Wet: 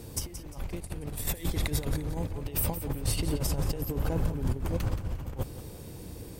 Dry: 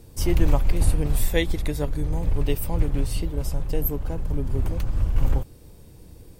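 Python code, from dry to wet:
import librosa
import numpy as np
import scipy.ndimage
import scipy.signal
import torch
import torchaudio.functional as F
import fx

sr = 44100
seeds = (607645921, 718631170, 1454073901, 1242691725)

y = fx.highpass(x, sr, hz=43.0, slope=6)
y = fx.low_shelf(y, sr, hz=64.0, db=-6.5)
y = fx.over_compress(y, sr, threshold_db=-32.0, ratio=-0.5)
y = fx.echo_feedback(y, sr, ms=175, feedback_pct=37, wet_db=-11.5)
y = F.gain(torch.from_numpy(y), 1.5).numpy()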